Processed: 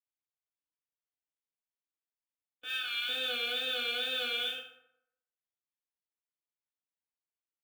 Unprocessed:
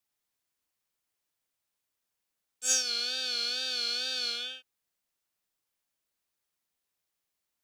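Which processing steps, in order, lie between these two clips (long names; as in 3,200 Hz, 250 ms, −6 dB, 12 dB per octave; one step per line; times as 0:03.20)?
0:02.64–0:03.09: high-pass filter 1,100 Hz 24 dB per octave
noise gate with hold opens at −31 dBFS
Chebyshev low-pass filter 3,600 Hz, order 6
notch filter 1,400 Hz, Q 16
floating-point word with a short mantissa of 2 bits
convolution reverb RT60 0.80 s, pre-delay 3 ms, DRR −1.5 dB
level +1.5 dB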